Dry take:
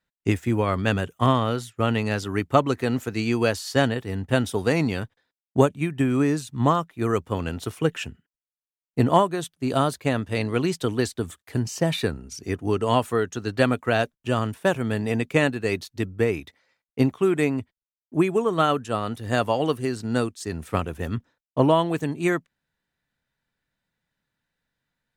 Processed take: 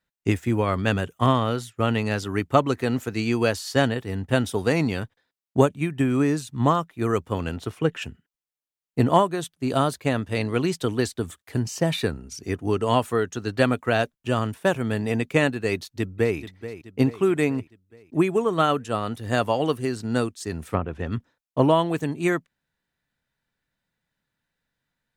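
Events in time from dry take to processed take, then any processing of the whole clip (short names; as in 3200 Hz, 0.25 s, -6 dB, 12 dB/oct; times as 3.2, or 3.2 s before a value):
7.56–8.02 high shelf 5600 Hz -10 dB
15.75–16.38 echo throw 0.43 s, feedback 55%, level -13 dB
20.7–21.12 treble ducked by the level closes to 1300 Hz, closed at -20.5 dBFS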